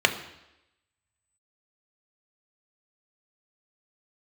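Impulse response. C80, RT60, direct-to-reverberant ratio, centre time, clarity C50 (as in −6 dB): 14.0 dB, 0.90 s, 5.5 dB, 12 ms, 11.5 dB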